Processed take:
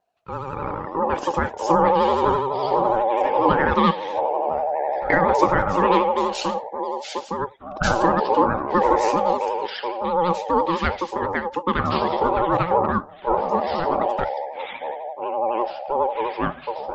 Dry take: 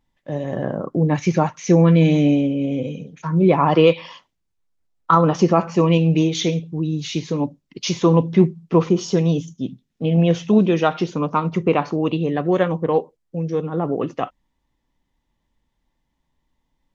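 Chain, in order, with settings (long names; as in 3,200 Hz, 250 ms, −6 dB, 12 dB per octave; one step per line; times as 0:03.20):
delay with pitch and tempo change per echo 172 ms, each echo −7 semitones, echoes 2
ring modulation 690 Hz
pitch vibrato 12 Hz 100 cents
level −2 dB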